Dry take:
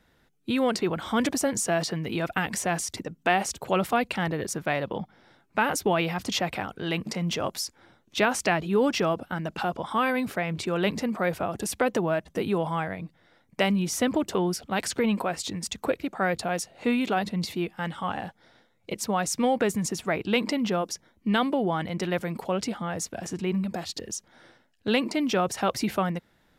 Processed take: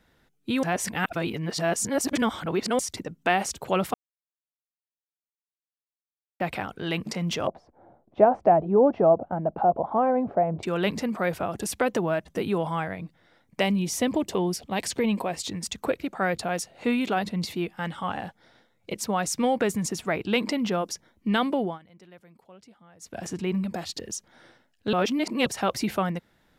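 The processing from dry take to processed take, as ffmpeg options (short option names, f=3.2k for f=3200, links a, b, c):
-filter_complex "[0:a]asettb=1/sr,asplit=3[a][b][c];[a]atrim=end=7.474[d];[b]atrim=start=7.47:end=10.63,asetpts=PTS-STARTPTS,afade=t=in:d=0.004:c=qsin,afade=t=out:st=3.156:d=0.004:c=qsin,lowpass=f=700:t=q:w=3.3[e];[c]atrim=start=10.626[f];[d][e]acrossfade=d=0.004:c1=hsin:c2=qsin[g];[g][f]acrossfade=d=0.004:c1=qsin:c2=hsin,asettb=1/sr,asplit=3[h][i][j];[h]atrim=end=13.614[k];[i]atrim=start=13.61:end=15.4,asetpts=PTS-STARTPTS,afade=t=in:d=0.004:c=qsin,afade=t=out:st=1.786:d=0.004:c=qsin,equalizer=f=1.4k:w=4:g=-10[l];[j]atrim=start=15.396[m];[k][l]acrossfade=d=0.004:c1=hsin:c2=qsin[n];[n][m]acrossfade=d=0.004:c1=qsin:c2=hsin,asplit=9[o][p][q][r][s][t][u][v][w];[o]atrim=end=0.632[x];[p]atrim=start=0.628:end=2.792,asetpts=PTS-STARTPTS,areverse[y];[q]atrim=start=2.788:end=3.94,asetpts=PTS-STARTPTS,afade=t=out:st=1.148:d=0.004:c=hsin[z];[r]atrim=start=3.94:end=6.4,asetpts=PTS-STARTPTS,volume=0[aa];[s]atrim=start=6.4:end=21.79,asetpts=PTS-STARTPTS,afade=t=in:d=0.004:c=hsin,afade=t=out:st=15.21:d=0.18:silence=0.0707946[ab];[t]atrim=start=21.79:end=23,asetpts=PTS-STARTPTS,volume=-23dB[ac];[u]atrim=start=23:end=24.932,asetpts=PTS-STARTPTS,afade=t=in:d=0.18:silence=0.0707946[ad];[v]atrim=start=24.928:end=25.462,asetpts=PTS-STARTPTS,areverse[ae];[w]atrim=start=25.458[af];[x][y]acrossfade=d=0.004:c1=hsin:c2=hsin[ag];[z][aa][ab][ac][ad]concat=n=5:v=0:a=1[ah];[ag][ah]acrossfade=d=0.004:c1=hsin:c2=hsin[ai];[ai][ae]acrossfade=d=0.004:c1=hsin:c2=hsin[aj];[aj][af]acrossfade=d=0.004:c1=hsin:c2=hsin"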